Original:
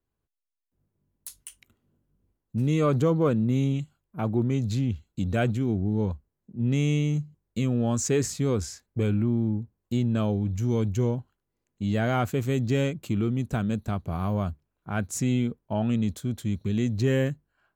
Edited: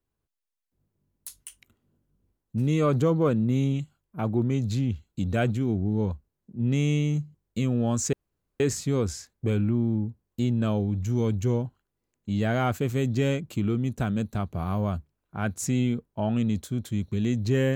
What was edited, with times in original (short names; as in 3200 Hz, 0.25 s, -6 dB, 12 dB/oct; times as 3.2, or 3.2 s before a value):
8.13 insert room tone 0.47 s